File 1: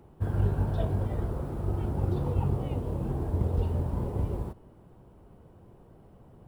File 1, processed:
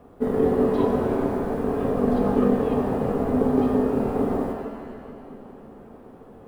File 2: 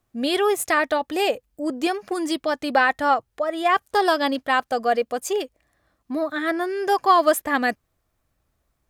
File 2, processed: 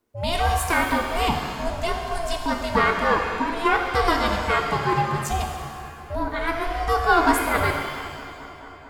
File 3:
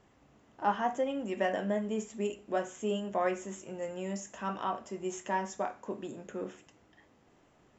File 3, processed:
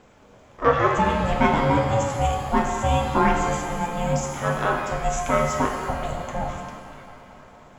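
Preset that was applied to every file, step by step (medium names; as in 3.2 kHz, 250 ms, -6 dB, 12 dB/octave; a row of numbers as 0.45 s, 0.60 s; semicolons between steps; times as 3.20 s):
ring modulator 340 Hz; feedback echo behind a low-pass 223 ms, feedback 81%, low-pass 2.3 kHz, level -19.5 dB; pitch-shifted reverb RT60 1.6 s, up +7 st, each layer -8 dB, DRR 3 dB; normalise loudness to -23 LUFS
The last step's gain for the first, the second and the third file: +7.0 dB, +0.5 dB, +12.5 dB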